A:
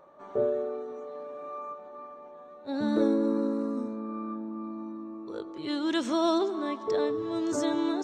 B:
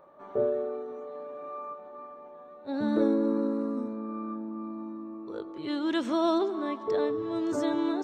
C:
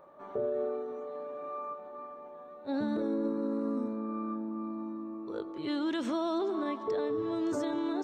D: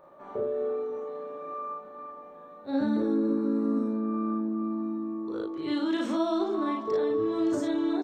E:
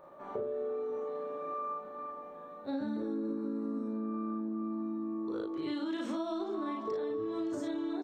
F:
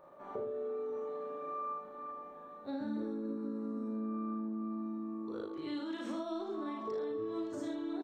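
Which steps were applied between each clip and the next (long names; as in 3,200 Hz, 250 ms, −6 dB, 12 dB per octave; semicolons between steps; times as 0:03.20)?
parametric band 6,700 Hz −8.5 dB 1.3 octaves
brickwall limiter −24.5 dBFS, peak gain reduction 10.5 dB
ambience of single reflections 37 ms −3 dB, 55 ms −4 dB
downward compressor, threshold −33 dBFS, peak gain reduction 10 dB
single-tap delay 78 ms −8.5 dB; level −3.5 dB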